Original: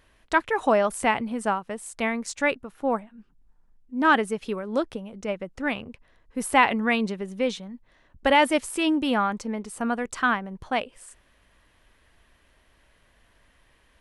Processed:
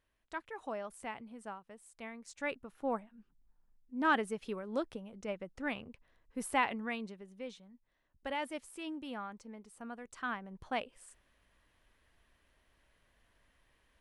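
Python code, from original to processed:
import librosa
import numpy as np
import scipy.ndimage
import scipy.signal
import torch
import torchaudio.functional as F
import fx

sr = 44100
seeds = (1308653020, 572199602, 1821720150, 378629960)

y = fx.gain(x, sr, db=fx.line((2.2, -20.0), (2.63, -10.0), (6.39, -10.0), (7.26, -19.0), (10.03, -19.0), (10.63, -10.0)))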